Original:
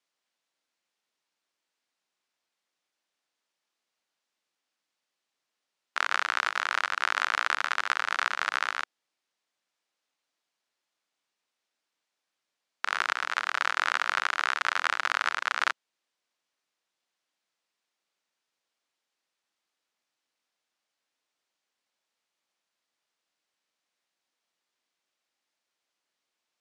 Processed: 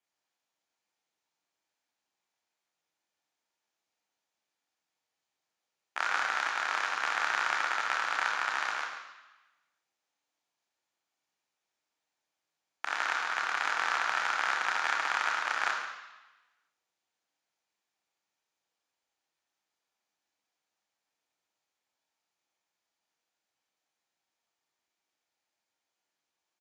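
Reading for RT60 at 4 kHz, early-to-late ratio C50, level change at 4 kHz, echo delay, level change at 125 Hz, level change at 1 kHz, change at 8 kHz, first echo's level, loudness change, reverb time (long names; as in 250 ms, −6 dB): 1.1 s, 4.0 dB, −3.5 dB, 139 ms, can't be measured, −1.5 dB, −1.5 dB, −12.0 dB, −2.0 dB, 1.0 s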